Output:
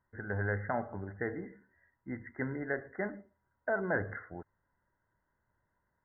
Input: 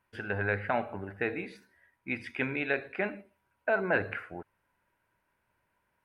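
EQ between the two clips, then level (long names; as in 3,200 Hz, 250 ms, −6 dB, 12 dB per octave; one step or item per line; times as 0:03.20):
linear-phase brick-wall low-pass 2,100 Hz
low-shelf EQ 180 Hz +8.5 dB
−5.0 dB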